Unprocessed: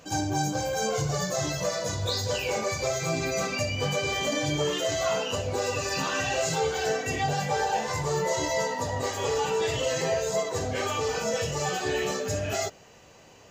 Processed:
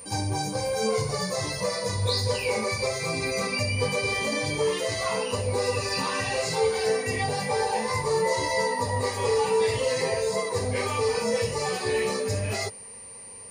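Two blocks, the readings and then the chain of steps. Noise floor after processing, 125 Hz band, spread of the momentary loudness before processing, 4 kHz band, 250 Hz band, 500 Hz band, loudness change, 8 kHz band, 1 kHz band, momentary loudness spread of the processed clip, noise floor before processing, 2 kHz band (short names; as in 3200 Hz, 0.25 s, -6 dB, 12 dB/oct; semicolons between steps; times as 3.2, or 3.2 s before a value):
-43 dBFS, +1.5 dB, 3 LU, +1.0 dB, -0.5 dB, +2.5 dB, +1.5 dB, -1.0 dB, +0.5 dB, 4 LU, -52 dBFS, +1.5 dB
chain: ripple EQ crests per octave 0.91, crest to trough 10 dB; whine 9100 Hz -41 dBFS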